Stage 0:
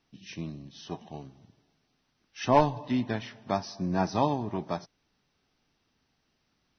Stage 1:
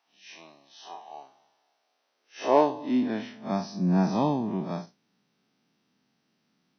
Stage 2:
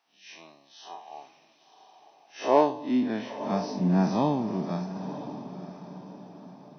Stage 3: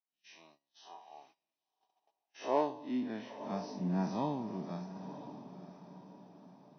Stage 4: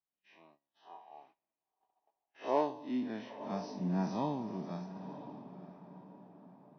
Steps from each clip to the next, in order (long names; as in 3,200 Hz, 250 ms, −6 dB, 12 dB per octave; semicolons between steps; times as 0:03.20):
spectrum smeared in time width 98 ms; high-pass filter sweep 800 Hz → 190 Hz, 0:01.58–0:03.54; level +1 dB
feedback delay with all-pass diffusion 973 ms, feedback 41%, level −11.5 dB
noise gate −52 dBFS, range −21 dB; tuned comb filter 960 Hz, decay 0.35 s, mix 70%
low-pass that shuts in the quiet parts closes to 1,600 Hz, open at −33.5 dBFS